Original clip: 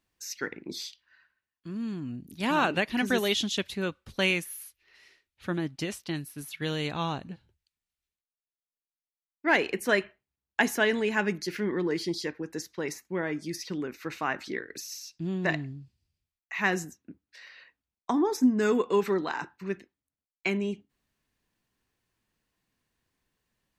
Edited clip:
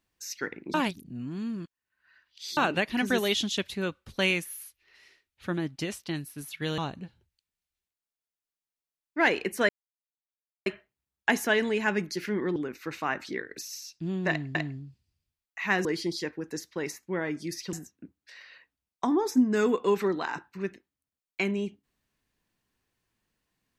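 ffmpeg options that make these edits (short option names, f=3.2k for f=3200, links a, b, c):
-filter_complex "[0:a]asplit=9[a][b][c][d][e][f][g][h][i];[a]atrim=end=0.742[j];[b]atrim=start=0.738:end=2.572,asetpts=PTS-STARTPTS,areverse[k];[c]atrim=start=2.568:end=6.782[l];[d]atrim=start=7.058:end=9.97,asetpts=PTS-STARTPTS,afade=t=out:st=2.908:d=0.004:c=hsin,apad=pad_dur=0.97[m];[e]atrim=start=9.97:end=11.872,asetpts=PTS-STARTPTS,afade=t=in:d=0.004:c=hsin[n];[f]atrim=start=13.748:end=15.742[o];[g]atrim=start=15.488:end=16.792[p];[h]atrim=start=11.868:end=13.752[q];[i]atrim=start=16.788[r];[j][k]acrossfade=d=0.004:c1=hsin:c2=hsin[s];[s][l]acrossfade=d=0.004:c1=hsin:c2=hsin[t];[m][n]concat=n=2:v=0:a=1[u];[t][u]acrossfade=d=0.004:c1=hsin:c2=hsin[v];[v][o]acrossfade=d=0.004:c1=hsin:c2=hsin[w];[w][p]acrossfade=d=0.004:c1=hsin:c2=hsin[x];[x][q]acrossfade=d=0.004:c1=hsin:c2=hsin[y];[y][r]acrossfade=d=0.004:c1=hsin:c2=hsin"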